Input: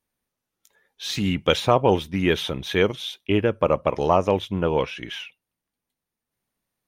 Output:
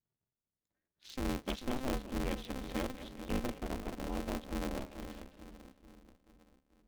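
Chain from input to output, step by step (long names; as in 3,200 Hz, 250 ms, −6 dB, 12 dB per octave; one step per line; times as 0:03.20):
adaptive Wiener filter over 15 samples
guitar amp tone stack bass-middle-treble 10-0-1
echo with a time of its own for lows and highs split 370 Hz, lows 437 ms, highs 202 ms, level −10 dB
ring modulator with a square carrier 130 Hz
level +3 dB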